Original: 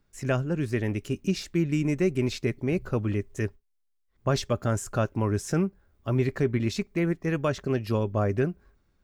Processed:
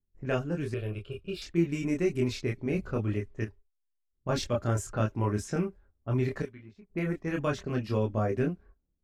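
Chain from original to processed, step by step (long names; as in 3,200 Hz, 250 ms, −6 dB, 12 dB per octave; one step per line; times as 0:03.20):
noise gate −51 dBFS, range −11 dB
0:06.42–0:06.90: first-order pre-emphasis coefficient 0.9
low-pass that shuts in the quiet parts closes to 360 Hz, open at −23.5 dBFS
multi-voice chorus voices 6, 0.47 Hz, delay 26 ms, depth 2.6 ms
0:00.74–0:01.42: phaser with its sweep stopped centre 1,300 Hz, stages 8
0:03.44–0:04.29: downward compressor 6 to 1, threshold −36 dBFS, peak gain reduction 9 dB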